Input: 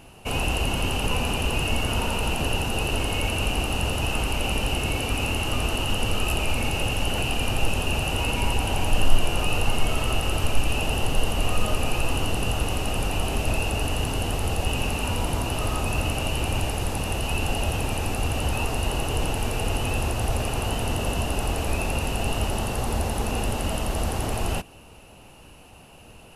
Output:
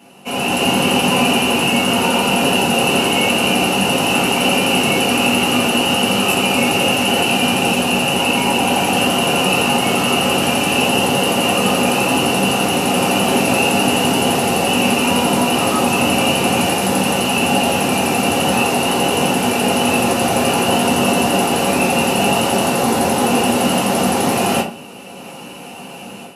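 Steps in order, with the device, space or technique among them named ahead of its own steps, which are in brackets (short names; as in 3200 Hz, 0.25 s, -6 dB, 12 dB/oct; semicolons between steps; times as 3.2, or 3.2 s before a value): far laptop microphone (reverb RT60 0.35 s, pre-delay 3 ms, DRR -5 dB; HPF 160 Hz 24 dB/oct; AGC); gain -1.5 dB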